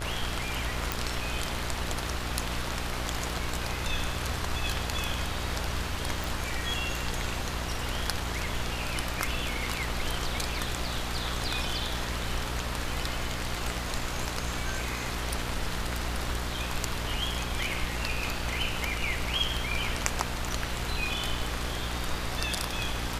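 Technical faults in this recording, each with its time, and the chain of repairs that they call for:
buzz 60 Hz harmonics 33 -36 dBFS
0.92 pop
6.24 pop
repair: de-click; de-hum 60 Hz, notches 33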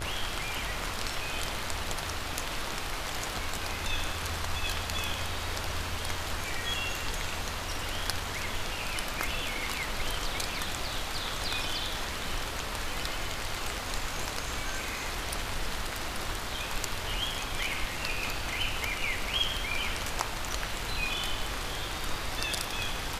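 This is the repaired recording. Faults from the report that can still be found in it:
none

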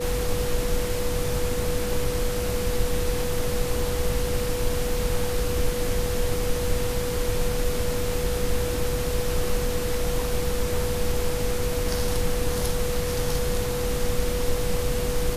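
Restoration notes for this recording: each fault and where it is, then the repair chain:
tone 490 Hz -28 dBFS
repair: notch 490 Hz, Q 30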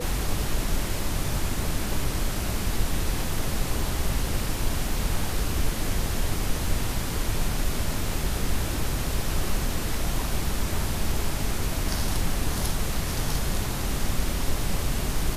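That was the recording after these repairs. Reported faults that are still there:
none

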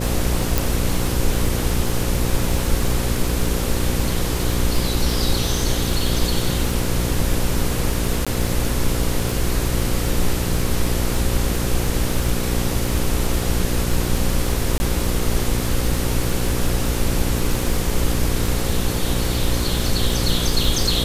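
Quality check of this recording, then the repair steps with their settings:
buzz 60 Hz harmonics 9 -24 dBFS
crackle 30/s -23 dBFS
0.58 pop
8.25–8.27 gap 16 ms
14.78–14.8 gap 20 ms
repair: de-click; de-hum 60 Hz, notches 9; interpolate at 8.25, 16 ms; interpolate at 14.78, 20 ms

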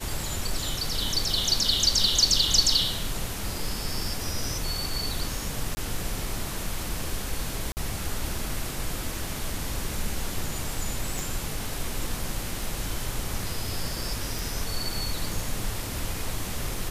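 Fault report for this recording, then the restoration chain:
5.75–5.77 gap 20 ms
7.72–7.77 gap 49 ms
11.19 pop
14.39 pop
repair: de-click; interpolate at 5.75, 20 ms; interpolate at 7.72, 49 ms

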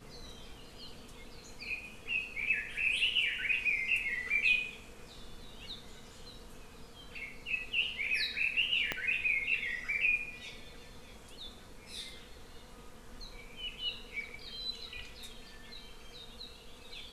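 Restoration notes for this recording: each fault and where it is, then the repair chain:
8.92 pop -17 dBFS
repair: de-click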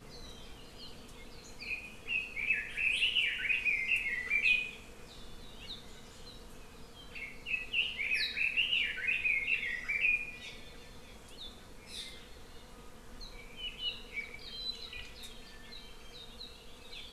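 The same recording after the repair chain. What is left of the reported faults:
8.92 pop

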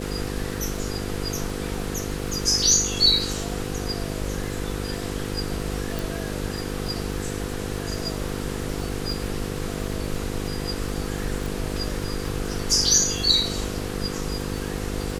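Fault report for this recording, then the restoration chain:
buzz 50 Hz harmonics 10 -31 dBFS
crackle 56/s -32 dBFS
5.99 pop
11.46 pop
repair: de-click; de-hum 50 Hz, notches 10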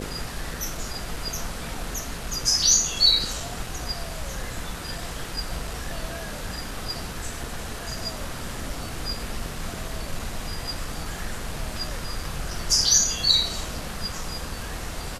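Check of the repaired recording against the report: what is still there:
11.46 pop

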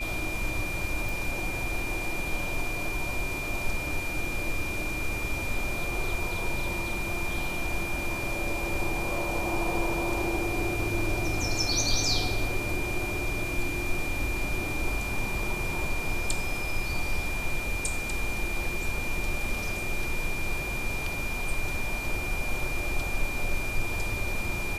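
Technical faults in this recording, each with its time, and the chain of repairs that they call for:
tone 2400 Hz -33 dBFS
1.09 pop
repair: de-click; notch 2400 Hz, Q 30

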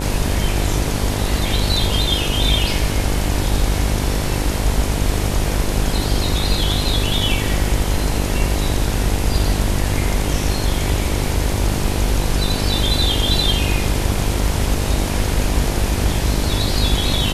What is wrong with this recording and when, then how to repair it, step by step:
buzz 50 Hz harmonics 20 -22 dBFS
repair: de-hum 50 Hz, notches 20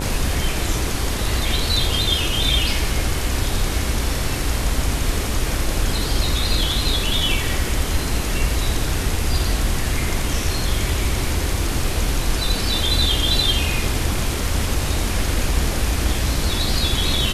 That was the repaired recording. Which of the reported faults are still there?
none

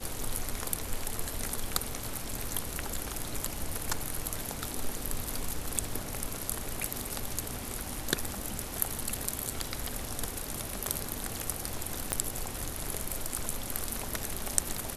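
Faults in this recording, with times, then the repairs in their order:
12.12 pop -11 dBFS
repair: de-click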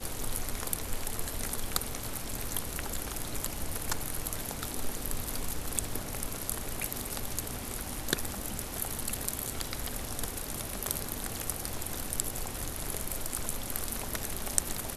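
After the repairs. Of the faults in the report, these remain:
12.12 pop

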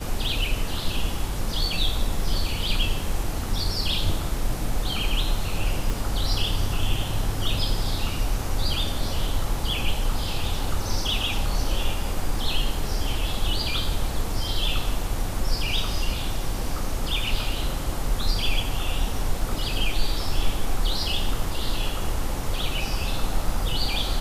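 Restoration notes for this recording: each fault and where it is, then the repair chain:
5.9 pop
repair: de-click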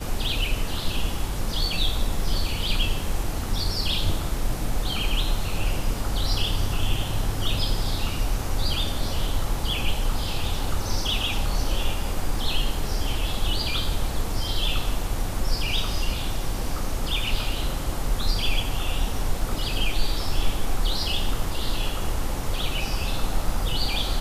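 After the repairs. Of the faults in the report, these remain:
5.9 pop

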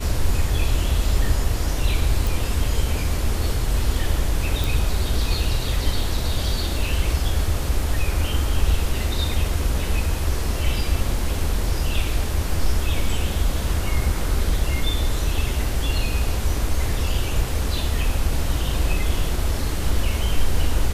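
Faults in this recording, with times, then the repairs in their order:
2.27 pop
4.64 pop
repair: de-click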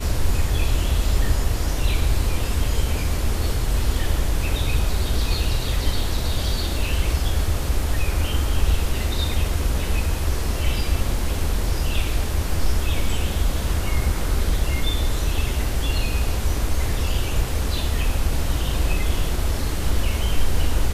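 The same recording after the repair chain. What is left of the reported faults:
none

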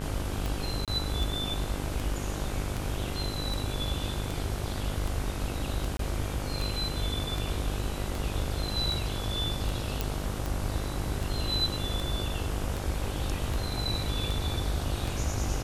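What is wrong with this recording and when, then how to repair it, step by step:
buzz 50 Hz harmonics 32 -35 dBFS
tick 78 rpm
0.85–0.88 gap 27 ms
5.97–5.99 gap 23 ms
10.01 pop -13 dBFS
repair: de-click; de-hum 50 Hz, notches 32; interpolate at 0.85, 27 ms; interpolate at 5.97, 23 ms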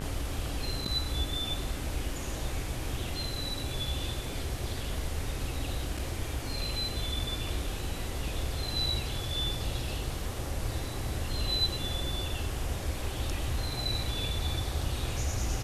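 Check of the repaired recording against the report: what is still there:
none

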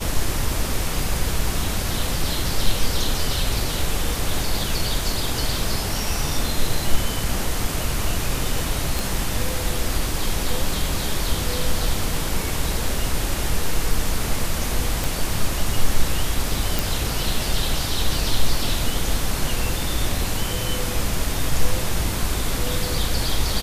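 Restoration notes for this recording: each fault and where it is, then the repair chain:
8.99 pop
15.04 pop
16.79 pop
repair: de-click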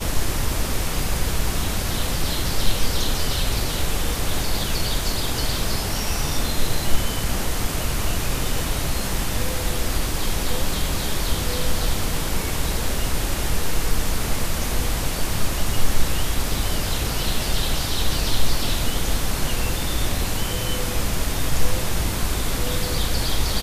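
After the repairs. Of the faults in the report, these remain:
none

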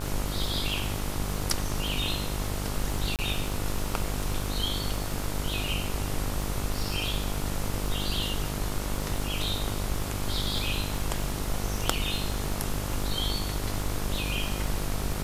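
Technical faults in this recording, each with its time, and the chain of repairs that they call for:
buzz 50 Hz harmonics 29 -33 dBFS
crackle 59/s -34 dBFS
3.16–3.19 gap 28 ms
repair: de-click; de-hum 50 Hz, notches 29; interpolate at 3.16, 28 ms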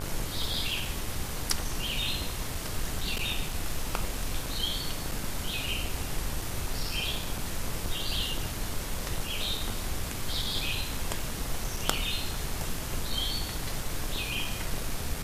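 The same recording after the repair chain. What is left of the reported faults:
none

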